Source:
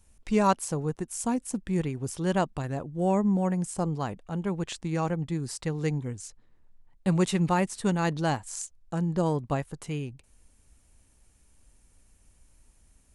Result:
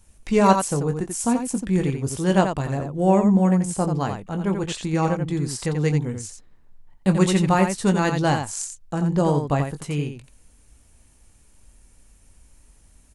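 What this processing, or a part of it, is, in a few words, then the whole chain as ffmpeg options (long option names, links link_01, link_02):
slapback doubling: -filter_complex "[0:a]asplit=3[link_01][link_02][link_03];[link_02]adelay=21,volume=-9dB[link_04];[link_03]adelay=87,volume=-6.5dB[link_05];[link_01][link_04][link_05]amix=inputs=3:normalize=0,volume=5.5dB"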